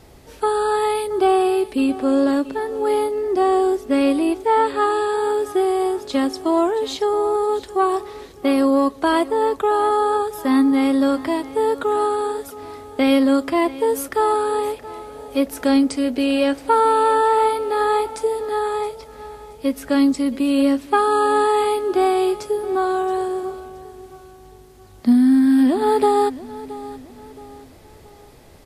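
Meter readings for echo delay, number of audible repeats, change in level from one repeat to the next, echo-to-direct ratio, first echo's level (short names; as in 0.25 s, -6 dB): 0.673 s, 3, -8.0 dB, -16.5 dB, -17.0 dB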